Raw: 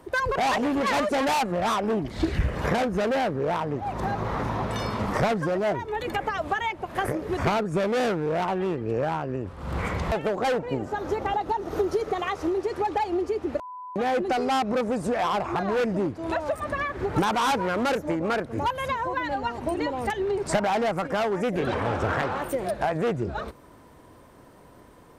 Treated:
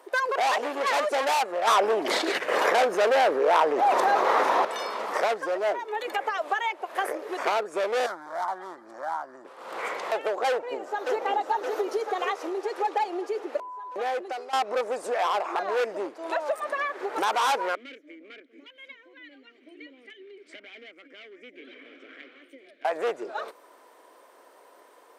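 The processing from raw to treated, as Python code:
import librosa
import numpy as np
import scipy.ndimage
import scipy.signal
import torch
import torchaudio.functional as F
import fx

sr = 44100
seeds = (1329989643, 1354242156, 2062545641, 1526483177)

y = fx.env_flatten(x, sr, amount_pct=100, at=(1.67, 4.65))
y = fx.fixed_phaser(y, sr, hz=1100.0, stages=4, at=(8.06, 9.45))
y = fx.echo_throw(y, sr, start_s=10.49, length_s=0.68, ms=570, feedback_pct=60, wet_db=-3.0)
y = fx.vowel_filter(y, sr, vowel='i', at=(17.75, 22.85))
y = fx.edit(y, sr, fx.fade_out_to(start_s=13.86, length_s=0.67, floor_db=-15.5), tone=tone)
y = scipy.signal.sosfilt(scipy.signal.butter(4, 420.0, 'highpass', fs=sr, output='sos'), y)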